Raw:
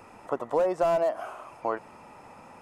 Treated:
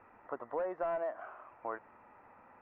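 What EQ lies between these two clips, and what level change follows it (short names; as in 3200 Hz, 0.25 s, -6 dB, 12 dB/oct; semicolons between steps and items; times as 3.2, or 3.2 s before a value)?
ladder low-pass 2100 Hz, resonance 45%; bell 160 Hz -7.5 dB 0.42 oct; -3.0 dB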